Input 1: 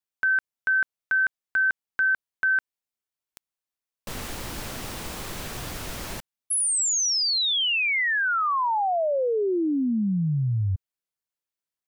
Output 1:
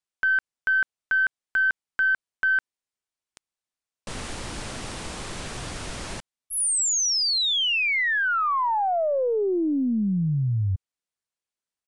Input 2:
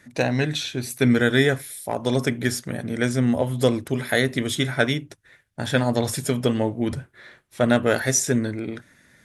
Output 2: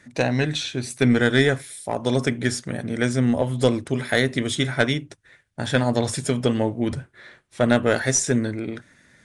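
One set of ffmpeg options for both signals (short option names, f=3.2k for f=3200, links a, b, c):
-af "aeval=exprs='0.631*(cos(1*acos(clip(val(0)/0.631,-1,1)))-cos(1*PI/2))+0.158*(cos(2*acos(clip(val(0)/0.631,-1,1)))-cos(2*PI/2))+0.0224*(cos(4*acos(clip(val(0)/0.631,-1,1)))-cos(4*PI/2))+0.0251*(cos(5*acos(clip(val(0)/0.631,-1,1)))-cos(5*PI/2))+0.00447*(cos(6*acos(clip(val(0)/0.631,-1,1)))-cos(6*PI/2))':c=same,aresample=22050,aresample=44100,volume=-1dB"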